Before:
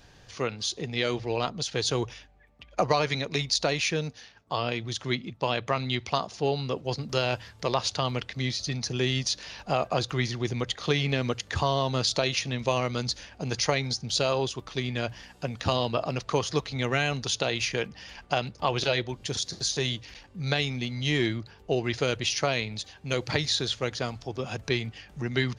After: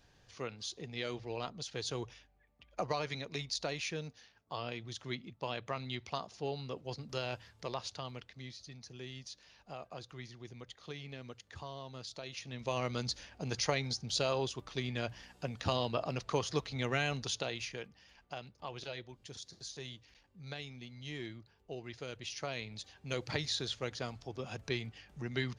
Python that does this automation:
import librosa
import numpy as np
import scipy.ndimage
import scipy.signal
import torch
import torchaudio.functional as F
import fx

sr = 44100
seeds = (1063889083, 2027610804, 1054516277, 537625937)

y = fx.gain(x, sr, db=fx.line((7.53, -11.5), (8.71, -20.0), (12.2, -20.0), (12.86, -7.0), (17.21, -7.0), (18.01, -17.5), (22.05, -17.5), (22.95, -9.0)))